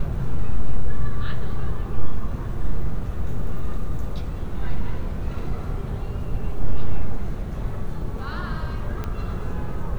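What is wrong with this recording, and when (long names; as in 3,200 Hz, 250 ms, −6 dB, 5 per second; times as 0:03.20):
0:09.04: click −16 dBFS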